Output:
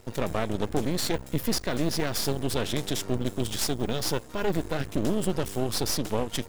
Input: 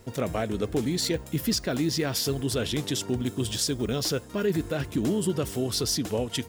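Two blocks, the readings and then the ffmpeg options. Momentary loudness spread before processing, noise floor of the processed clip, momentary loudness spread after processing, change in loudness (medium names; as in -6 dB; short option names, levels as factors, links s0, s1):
3 LU, -43 dBFS, 2 LU, -1.5 dB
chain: -af "aeval=exprs='max(val(0),0)':c=same,volume=1.41"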